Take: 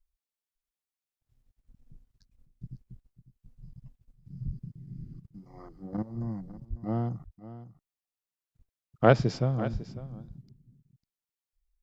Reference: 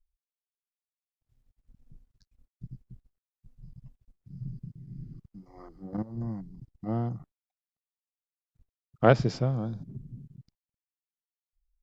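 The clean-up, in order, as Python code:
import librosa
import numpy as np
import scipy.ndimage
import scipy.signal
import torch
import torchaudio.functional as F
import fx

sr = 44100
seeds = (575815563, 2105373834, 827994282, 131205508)

y = fx.highpass(x, sr, hz=140.0, slope=24, at=(4.45, 4.57), fade=0.02)
y = fx.highpass(y, sr, hz=140.0, slope=24, at=(6.69, 6.81), fade=0.02)
y = fx.highpass(y, sr, hz=140.0, slope=24, at=(9.72, 9.84), fade=0.02)
y = fx.fix_interpolate(y, sr, at_s=(5.27,), length_ms=8.7)
y = fx.fix_echo_inverse(y, sr, delay_ms=550, level_db=-15.0)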